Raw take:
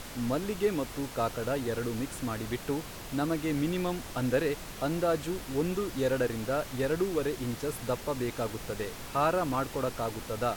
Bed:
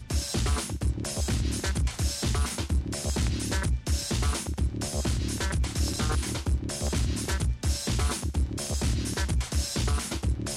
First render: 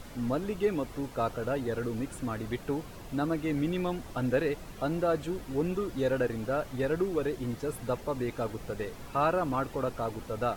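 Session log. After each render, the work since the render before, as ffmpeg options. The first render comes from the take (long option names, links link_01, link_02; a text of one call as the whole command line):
ffmpeg -i in.wav -af "afftdn=noise_reduction=9:noise_floor=-43" out.wav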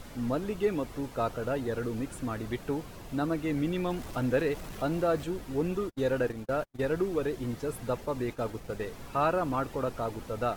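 ffmpeg -i in.wav -filter_complex "[0:a]asettb=1/sr,asplit=3[link_01][link_02][link_03];[link_01]atrim=end=3.904[link_04];[link_02]atrim=start=3.9:end=5.24,asetpts=PTS-STARTPTS,afade=type=in:duration=0.004:curve=qsin,afade=type=out:start_time=1.336:duration=0.004:curve=qsin,aeval=exprs='val(0)+0.5*0.00668*sgn(val(0))':channel_layout=same[link_05];[link_03]atrim=start=5.236[link_06];[link_04][link_05]acrossfade=duration=0.004:curve1=hsin:curve2=qsin[link_07];[link_07][link_06]acrossfade=duration=0.004:curve1=qsin:curve2=hsin,asplit=3[link_08][link_09][link_10];[link_08]afade=type=out:start_time=5.87:duration=0.02[link_11];[link_09]agate=range=-45dB:threshold=-35dB:ratio=16:release=100:detection=peak,afade=type=in:start_time=5.87:duration=0.02,afade=type=out:start_time=6.88:duration=0.02[link_12];[link_10]afade=type=in:start_time=6.88:duration=0.02[link_13];[link_11][link_12][link_13]amix=inputs=3:normalize=0,asplit=3[link_14][link_15][link_16];[link_14]afade=type=out:start_time=8.05:duration=0.02[link_17];[link_15]agate=range=-33dB:threshold=-39dB:ratio=3:release=100:detection=peak,afade=type=in:start_time=8.05:duration=0.02,afade=type=out:start_time=8.88:duration=0.02[link_18];[link_16]afade=type=in:start_time=8.88:duration=0.02[link_19];[link_17][link_18][link_19]amix=inputs=3:normalize=0" out.wav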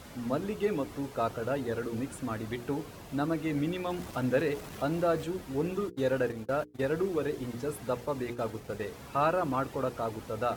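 ffmpeg -i in.wav -af "highpass=62,bandreject=frequency=60:width_type=h:width=6,bandreject=frequency=120:width_type=h:width=6,bandreject=frequency=180:width_type=h:width=6,bandreject=frequency=240:width_type=h:width=6,bandreject=frequency=300:width_type=h:width=6,bandreject=frequency=360:width_type=h:width=6,bandreject=frequency=420:width_type=h:width=6,bandreject=frequency=480:width_type=h:width=6" out.wav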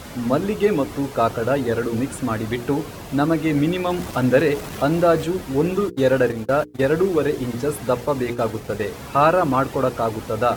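ffmpeg -i in.wav -af "volume=11.5dB" out.wav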